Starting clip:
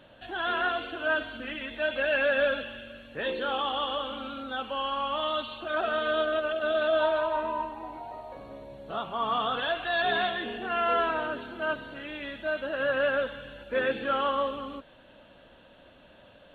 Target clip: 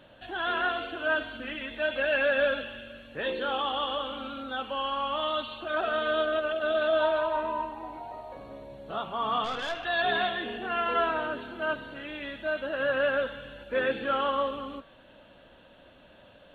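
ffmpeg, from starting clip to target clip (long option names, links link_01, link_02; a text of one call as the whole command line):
ffmpeg -i in.wav -filter_complex "[0:a]asettb=1/sr,asplit=3[link_01][link_02][link_03];[link_01]atrim=end=9.444[link_04];[link_02]atrim=start=9.44:end=9.85,asetpts=PTS-STARTPTS,afade=type=in:duration=0.004:curve=qsin,afade=type=out:start_time=0.406:duration=0.004:curve=qsin,aeval=exprs='(tanh(20*val(0)+0.5)-tanh(0.5))/20':channel_layout=same[link_05];[link_03]atrim=start=9.846[link_06];[link_04][link_05]acrossfade=duration=0.004:curve1=hsin:curve2=qsin[link_07];[link_07][link_06]acrossfade=duration=0.004:curve1=qsin:curve2=hsin,bandreject=frequency=227.9:width_type=h:width=4,bandreject=frequency=455.8:width_type=h:width=4,bandreject=frequency=683.7:width_type=h:width=4,bandreject=frequency=911.6:width_type=h:width=4,bandreject=frequency=1139.5:width_type=h:width=4,bandreject=frequency=1367.4:width_type=h:width=4,bandreject=frequency=1595.3:width_type=h:width=4,bandreject=frequency=1823.2:width_type=h:width=4,bandreject=frequency=2051.1:width_type=h:width=4,bandreject=frequency=2279:width_type=h:width=4,bandreject=frequency=2506.9:width_type=h:width=4,bandreject=frequency=2734.8:width_type=h:width=4,bandreject=frequency=2962.7:width_type=h:width=4,bandreject=frequency=3190.6:width_type=h:width=4,bandreject=frequency=3418.5:width_type=h:width=4,bandreject=frequency=3646.4:width_type=h:width=4,bandreject=frequency=3874.3:width_type=h:width=4,bandreject=frequency=4102.2:width_type=h:width=4,bandreject=frequency=4330.1:width_type=h:width=4,bandreject=frequency=4558:width_type=h:width=4,bandreject=frequency=4785.9:width_type=h:width=4,bandreject=frequency=5013.8:width_type=h:width=4,bandreject=frequency=5241.7:width_type=h:width=4,bandreject=frequency=5469.6:width_type=h:width=4,bandreject=frequency=5697.5:width_type=h:width=4,bandreject=frequency=5925.4:width_type=h:width=4,bandreject=frequency=6153.3:width_type=h:width=4" out.wav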